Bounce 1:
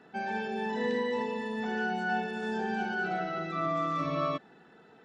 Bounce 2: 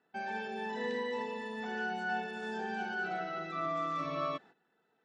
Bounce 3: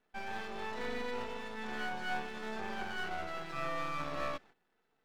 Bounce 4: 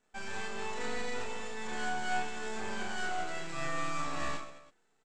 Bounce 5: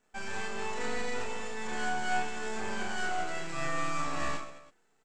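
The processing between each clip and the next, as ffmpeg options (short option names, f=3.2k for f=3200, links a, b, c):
-af "agate=range=-14dB:threshold=-49dB:ratio=16:detection=peak,lowshelf=f=320:g=-7.5,volume=-3dB"
-af "aeval=exprs='max(val(0),0)':c=same,volume=1.5dB"
-filter_complex "[0:a]lowpass=f=7.6k:t=q:w=6,asplit=2[a][b];[b]aecho=0:1:30|72|130.8|213.1|328.4:0.631|0.398|0.251|0.158|0.1[c];[a][c]amix=inputs=2:normalize=0"
-af "equalizer=f=3.7k:t=o:w=0.37:g=-3,volume=2.5dB"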